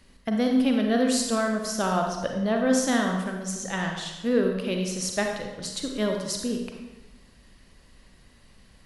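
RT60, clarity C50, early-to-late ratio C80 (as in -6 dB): 1.2 s, 3.5 dB, 5.5 dB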